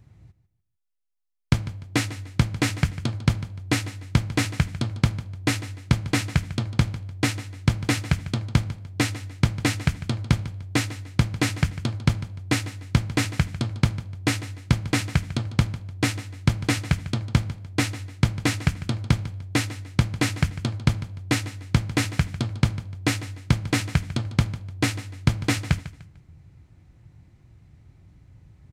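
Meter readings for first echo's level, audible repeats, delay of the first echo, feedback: -15.5 dB, 2, 149 ms, 31%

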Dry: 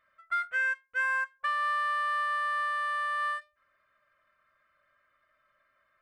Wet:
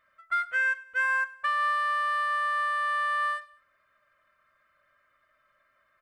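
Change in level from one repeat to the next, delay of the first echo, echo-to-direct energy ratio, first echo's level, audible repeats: -5.5 dB, 100 ms, -20.5 dB, -21.5 dB, 2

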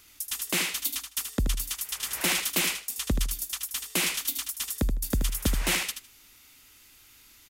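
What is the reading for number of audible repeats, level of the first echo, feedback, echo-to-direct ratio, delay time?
2, -7.5 dB, 16%, -7.5 dB, 78 ms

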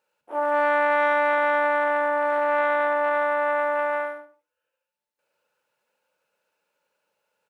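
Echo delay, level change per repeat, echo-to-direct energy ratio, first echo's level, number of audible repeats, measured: 71 ms, -12.0 dB, -5.5 dB, -6.0 dB, 3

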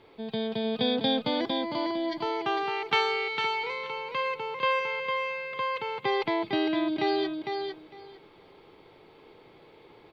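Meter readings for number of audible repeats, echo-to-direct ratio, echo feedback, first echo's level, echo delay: 2, -5.0 dB, 16%, -5.0 dB, 454 ms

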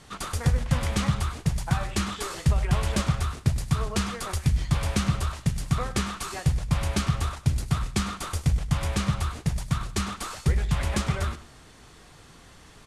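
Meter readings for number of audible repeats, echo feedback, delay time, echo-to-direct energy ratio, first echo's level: 2, 23%, 101 ms, -16.0 dB, -16.0 dB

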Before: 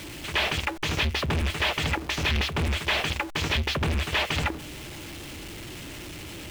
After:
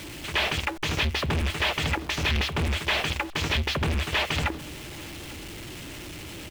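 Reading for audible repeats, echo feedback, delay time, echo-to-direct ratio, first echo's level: 1, no regular repeats, 842 ms, -23.5 dB, -23.5 dB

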